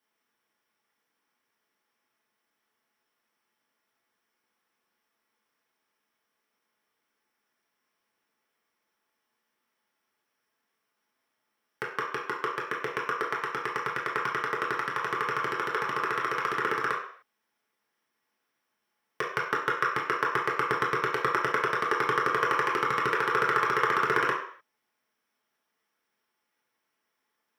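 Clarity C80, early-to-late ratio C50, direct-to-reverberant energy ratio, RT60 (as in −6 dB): 8.5 dB, 4.5 dB, −5.0 dB, non-exponential decay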